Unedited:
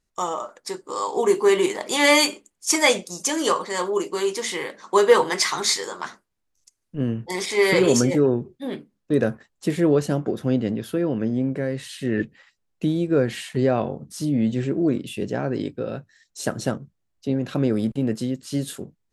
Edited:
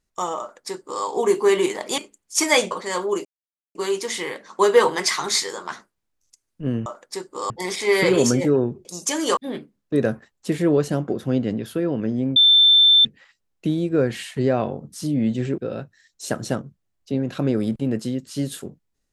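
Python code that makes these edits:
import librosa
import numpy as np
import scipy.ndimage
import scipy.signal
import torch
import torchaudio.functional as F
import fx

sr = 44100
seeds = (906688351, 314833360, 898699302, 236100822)

y = fx.edit(x, sr, fx.duplicate(start_s=0.4, length_s=0.64, to_s=7.2),
    fx.cut(start_s=1.98, length_s=0.32),
    fx.move(start_s=3.03, length_s=0.52, to_s=8.55),
    fx.insert_silence(at_s=4.09, length_s=0.5),
    fx.bleep(start_s=11.54, length_s=0.69, hz=3550.0, db=-10.0),
    fx.cut(start_s=14.76, length_s=0.98), tone=tone)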